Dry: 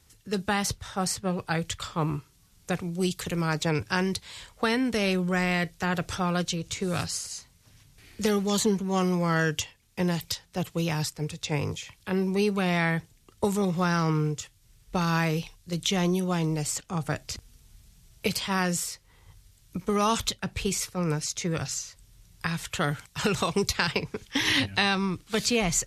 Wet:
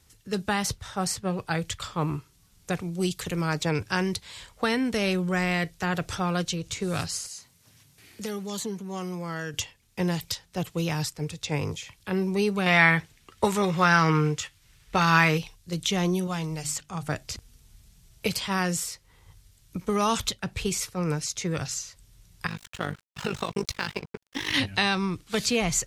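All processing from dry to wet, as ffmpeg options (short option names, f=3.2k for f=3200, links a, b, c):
-filter_complex "[0:a]asettb=1/sr,asplit=3[a][b][c];[a]atrim=end=7.264[d];[b]atrim=start=7.26:end=9.54,asetpts=PTS-STARTPTS,afade=t=in:d=0.004:c=qsin,afade=t=out:st=2.276:d=0.004:c=qsin,highpass=110,highshelf=f=9.3k:g=6,acompressor=threshold=-44dB:ratio=1.5:attack=3.2:release=140:knee=1:detection=peak[e];[c]atrim=start=9.536[f];[d][e]acrossfade=d=0.004:c1=hsin:c2=qsin[g];[g][f]acrossfade=d=0.004:c1=qsin:c2=hsin,asettb=1/sr,asplit=3[h][i][j];[h]atrim=end=12.664[k];[i]atrim=start=12.66:end=15.38,asetpts=PTS-STARTPTS,afade=t=in:d=0.004:c=qsin,afade=t=out:st=2.716:d=0.004:c=qsin,equalizer=f=1.9k:t=o:w=2.5:g=10,asplit=2[l][m];[m]adelay=13,volume=-12dB[n];[l][n]amix=inputs=2:normalize=0,atrim=end_sample=119952[o];[j]atrim=start=15.376[p];[k][o]acrossfade=d=0.004:c1=hsin:c2=qsin[q];[q][p]acrossfade=d=0.004:c1=qsin:c2=hsin,asettb=1/sr,asplit=3[r][s][t];[r]atrim=end=16.274[u];[s]atrim=start=16.27:end=17.08,asetpts=PTS-STARTPTS,afade=t=in:d=0.004:c=qsin,afade=t=out:st=0.806:d=0.004:c=qsin,equalizer=f=340:t=o:w=1.7:g=-8,bandreject=f=50:t=h:w=6,bandreject=f=100:t=h:w=6,bandreject=f=150:t=h:w=6,bandreject=f=200:t=h:w=6,bandreject=f=250:t=h:w=6,bandreject=f=300:t=h:w=6,bandreject=f=350:t=h:w=6[v];[t]atrim=start=17.076[w];[u][v]acrossfade=d=0.004:c1=hsin:c2=qsin[x];[x][w]acrossfade=d=0.004:c1=qsin:c2=hsin,asettb=1/sr,asplit=3[y][z][aa];[y]atrim=end=22.474[ab];[z]atrim=start=22.47:end=24.54,asetpts=PTS-STARTPTS,afade=t=in:d=0.004:c=qsin,afade=t=out:st=2.066:d=0.004:c=qsin,tremolo=f=50:d=0.788,highshelf=f=6.9k:g=-7,aeval=exprs='sgn(val(0))*max(abs(val(0))-0.00668,0)':c=same[ac];[aa]atrim=start=24.536[ad];[ab][ac]acrossfade=d=0.004:c1=hsin:c2=qsin[ae];[ae][ad]acrossfade=d=0.004:c1=qsin:c2=hsin"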